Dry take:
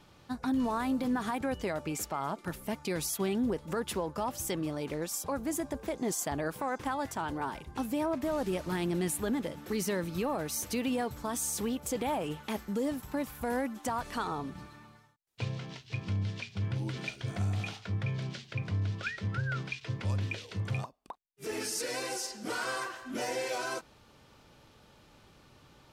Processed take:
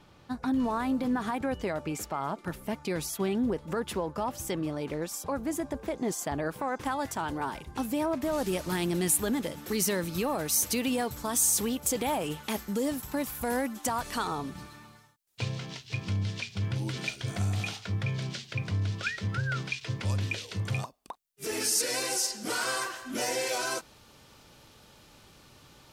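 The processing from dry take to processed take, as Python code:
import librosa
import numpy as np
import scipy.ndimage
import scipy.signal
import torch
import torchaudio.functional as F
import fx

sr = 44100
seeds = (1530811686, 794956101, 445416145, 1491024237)

y = fx.high_shelf(x, sr, hz=3900.0, db=fx.steps((0.0, -4.5), (6.79, 3.5), (8.32, 9.0)))
y = y * 10.0 ** (2.0 / 20.0)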